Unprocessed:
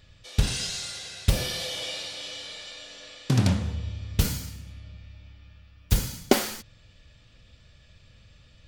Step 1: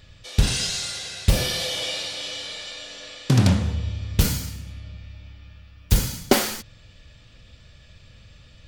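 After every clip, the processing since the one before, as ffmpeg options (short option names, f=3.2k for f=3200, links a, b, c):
-af "asoftclip=type=tanh:threshold=-11dB,volume=5.5dB"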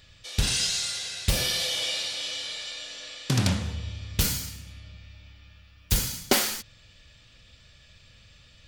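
-af "tiltshelf=f=1.2k:g=-4,volume=-3.5dB"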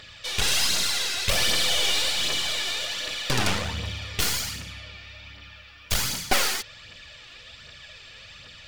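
-filter_complex "[0:a]asplit=2[a][b];[b]highpass=f=720:p=1,volume=19dB,asoftclip=type=tanh:threshold=-8dB[c];[a][c]amix=inputs=2:normalize=0,lowpass=f=3.2k:p=1,volume=-6dB,aeval=exprs='clip(val(0),-1,0.0251)':c=same,aphaser=in_gain=1:out_gain=1:delay=2.9:decay=0.44:speed=1.3:type=triangular"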